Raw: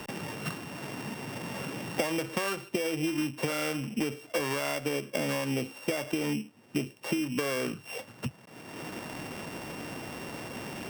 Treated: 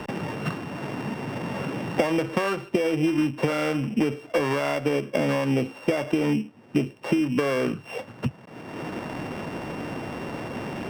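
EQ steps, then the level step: LPF 1700 Hz 6 dB/oct; +8.0 dB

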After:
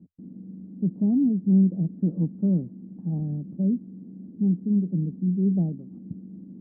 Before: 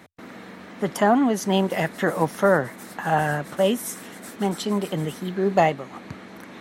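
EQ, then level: ladder low-pass 340 Hz, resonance 45%; low shelf 140 Hz +8 dB; bell 180 Hz +13 dB 0.48 oct; -2.5 dB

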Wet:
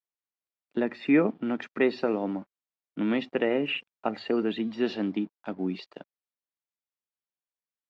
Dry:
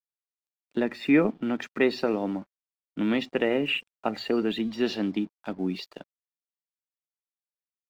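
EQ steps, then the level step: HPF 130 Hz 6 dB/oct; air absorption 87 m; high shelf 4400 Hz -7.5 dB; 0.0 dB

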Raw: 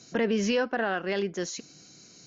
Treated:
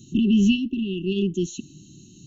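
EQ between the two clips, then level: brick-wall FIR band-stop 400–2600 Hz; low shelf 170 Hz +10 dB; fixed phaser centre 2100 Hz, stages 4; +8.0 dB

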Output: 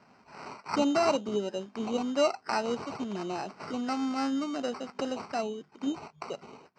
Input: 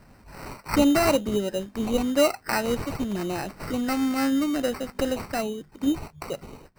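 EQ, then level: dynamic EQ 2100 Hz, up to -6 dB, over -44 dBFS, Q 1.5; air absorption 62 m; speaker cabinet 280–6800 Hz, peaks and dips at 310 Hz -7 dB, 530 Hz -7 dB, 1800 Hz -7 dB, 3700 Hz -5 dB; 0.0 dB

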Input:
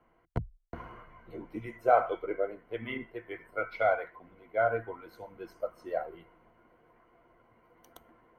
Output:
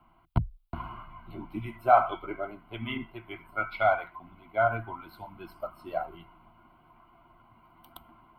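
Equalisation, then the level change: fixed phaser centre 1800 Hz, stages 6; +8.0 dB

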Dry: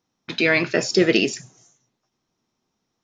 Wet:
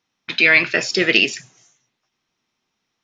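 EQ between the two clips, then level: bell 2500 Hz +13 dB 2.2 oct; -4.5 dB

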